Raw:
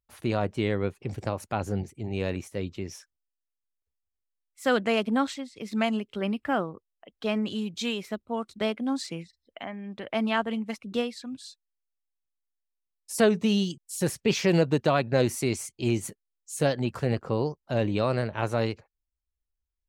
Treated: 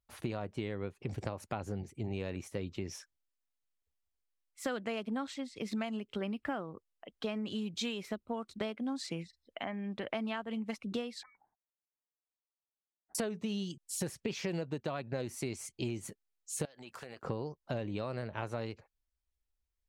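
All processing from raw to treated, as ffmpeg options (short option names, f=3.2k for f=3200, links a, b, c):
-filter_complex "[0:a]asettb=1/sr,asplit=3[a][b][c];[a]atrim=end=11.234[d];[b]atrim=start=11.23:end=13.15,asetpts=PTS-STARTPTS,afade=t=in:d=0.004:c=qsin,afade=t=out:st=1.916:d=0.004:c=qsin,highpass=1.5k,lowpass=f=2.1k:t=q:w=0.5098,lowpass=f=2.1k:t=q:w=0.6013,lowpass=f=2.1k:t=q:w=0.9,lowpass=f=2.1k:t=q:w=2.563,afreqshift=-2500[e];[c]atrim=start=13.146[f];[d][e]acrossfade=d=0.004:c1=hsin:c2=qsin[g];[g][f]acrossfade=d=0.004:c1=qsin:c2=hsin,asettb=1/sr,asplit=3[h][i][j];[h]atrim=end=16.654[k];[i]atrim=start=16.65:end=17.23,asetpts=PTS-STARTPTS,afade=t=in:d=0.004:c=qsin,afade=t=out:st=0.576:d=0.004:c=qsin,highpass=f=1.1k:p=1,highshelf=f=12k:g=8.5,acompressor=threshold=-42dB:ratio=12:attack=3.2:release=140:knee=1:detection=peak[l];[j]atrim=start=17.226[m];[k][l]acrossfade=d=0.004:c1=hsin:c2=qsin[n];[n][m]acrossfade=d=0.004:c1=qsin:c2=hsin,highshelf=f=9.9k:g=-5.5,acompressor=threshold=-33dB:ratio=12"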